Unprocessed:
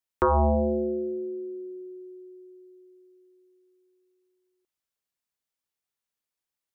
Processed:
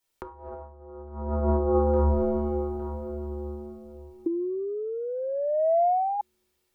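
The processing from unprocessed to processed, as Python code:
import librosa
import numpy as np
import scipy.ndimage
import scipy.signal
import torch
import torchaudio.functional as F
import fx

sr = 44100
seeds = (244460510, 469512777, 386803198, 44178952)

y = fx.halfwave_gain(x, sr, db=-3.0, at=(2.1, 2.55))
y = fx.peak_eq(y, sr, hz=1600.0, db=-2.5, octaves=0.96)
y = fx.echo_feedback(y, sr, ms=859, feedback_pct=32, wet_db=-17.0)
y = fx.room_shoebox(y, sr, seeds[0], volume_m3=200.0, walls='hard', distance_m=1.2)
y = fx.spec_paint(y, sr, seeds[1], shape='rise', start_s=4.26, length_s=1.95, low_hz=330.0, high_hz=830.0, level_db=-22.0)
y = y + 0.3 * np.pad(y, (int(2.2 * sr / 1000.0), 0))[:len(y)]
y = fx.over_compress(y, sr, threshold_db=-26.0, ratio=-0.5)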